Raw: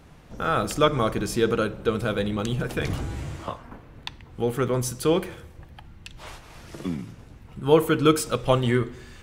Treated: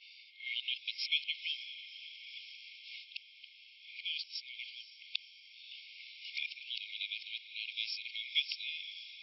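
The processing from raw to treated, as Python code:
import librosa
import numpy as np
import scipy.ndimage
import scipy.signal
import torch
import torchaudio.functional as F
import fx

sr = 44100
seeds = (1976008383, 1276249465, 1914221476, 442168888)

y = np.flip(x).copy()
y = fx.brickwall_bandpass(y, sr, low_hz=2100.0, high_hz=5600.0)
y = fx.echo_diffused(y, sr, ms=525, feedback_pct=64, wet_db=-12.5)
y = y * librosa.db_to_amplitude(-1.0)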